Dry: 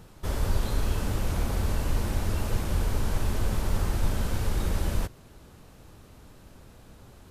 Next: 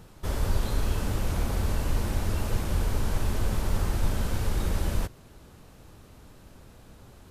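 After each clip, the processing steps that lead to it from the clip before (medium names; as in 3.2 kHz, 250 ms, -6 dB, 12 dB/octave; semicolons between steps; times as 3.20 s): no audible change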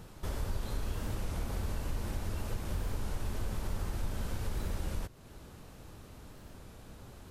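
compression 2:1, threshold -38 dBFS, peak gain reduction 11 dB; warped record 33 1/3 rpm, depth 100 cents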